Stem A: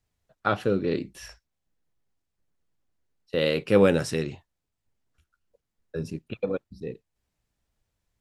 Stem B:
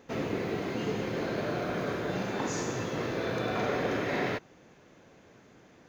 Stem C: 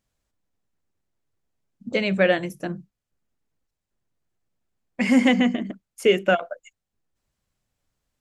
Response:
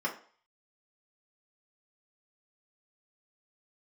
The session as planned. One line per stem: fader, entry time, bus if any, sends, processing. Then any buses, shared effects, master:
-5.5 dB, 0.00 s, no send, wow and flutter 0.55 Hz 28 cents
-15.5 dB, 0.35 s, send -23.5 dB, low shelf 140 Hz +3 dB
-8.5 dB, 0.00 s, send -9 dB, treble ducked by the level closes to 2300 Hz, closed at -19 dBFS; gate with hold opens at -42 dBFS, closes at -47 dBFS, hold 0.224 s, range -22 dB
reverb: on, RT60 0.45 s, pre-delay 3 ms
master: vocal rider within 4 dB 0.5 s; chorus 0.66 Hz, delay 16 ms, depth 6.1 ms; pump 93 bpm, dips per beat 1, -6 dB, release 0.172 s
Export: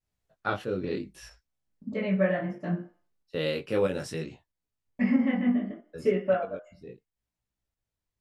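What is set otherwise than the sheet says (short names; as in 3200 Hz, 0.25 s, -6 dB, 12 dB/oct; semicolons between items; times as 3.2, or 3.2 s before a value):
stem B: muted; reverb return +7.5 dB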